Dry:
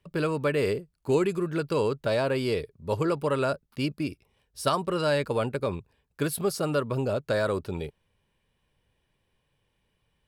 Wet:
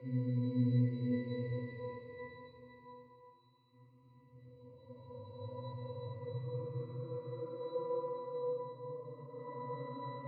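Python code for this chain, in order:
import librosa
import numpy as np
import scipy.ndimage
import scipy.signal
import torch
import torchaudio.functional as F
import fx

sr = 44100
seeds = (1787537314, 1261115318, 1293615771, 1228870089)

y = fx.high_shelf(x, sr, hz=7300.0, db=-10.5)
y = fx.echo_stepped(y, sr, ms=422, hz=3400.0, octaves=-1.4, feedback_pct=70, wet_db=-7.5)
y = fx.paulstretch(y, sr, seeds[0], factor=11.0, window_s=0.25, from_s=2.4)
y = fx.octave_resonator(y, sr, note='B', decay_s=0.7)
y = fx.band_widen(y, sr, depth_pct=40)
y = y * 10.0 ** (5.0 / 20.0)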